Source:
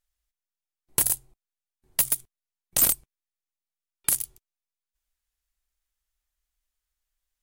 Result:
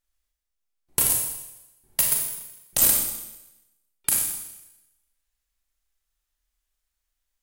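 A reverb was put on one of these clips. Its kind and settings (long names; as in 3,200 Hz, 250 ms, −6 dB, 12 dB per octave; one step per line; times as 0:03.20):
four-comb reverb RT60 0.96 s, combs from 28 ms, DRR −0.5 dB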